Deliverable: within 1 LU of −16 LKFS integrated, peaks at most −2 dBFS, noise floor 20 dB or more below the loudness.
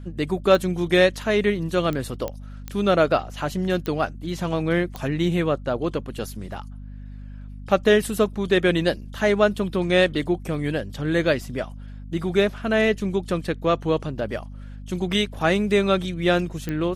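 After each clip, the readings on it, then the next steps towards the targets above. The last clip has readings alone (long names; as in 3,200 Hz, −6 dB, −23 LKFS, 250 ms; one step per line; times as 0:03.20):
number of clicks 7; mains hum 50 Hz; hum harmonics up to 250 Hz; level of the hum −35 dBFS; integrated loudness −23.0 LKFS; sample peak −5.0 dBFS; target loudness −16.0 LKFS
→ click removal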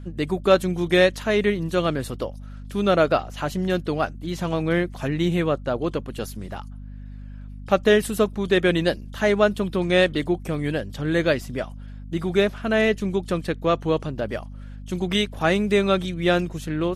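number of clicks 0; mains hum 50 Hz; hum harmonics up to 250 Hz; level of the hum −35 dBFS
→ mains-hum notches 50/100/150/200/250 Hz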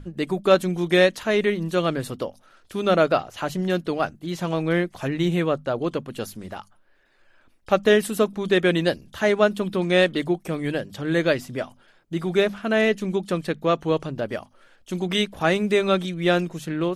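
mains hum none found; integrated loudness −23.0 LKFS; sample peak −5.0 dBFS; target loudness −16.0 LKFS
→ level +7 dB
brickwall limiter −2 dBFS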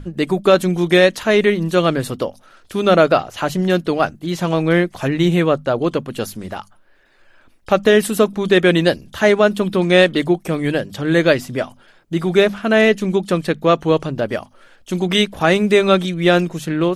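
integrated loudness −16.5 LKFS; sample peak −2.0 dBFS; background noise floor −52 dBFS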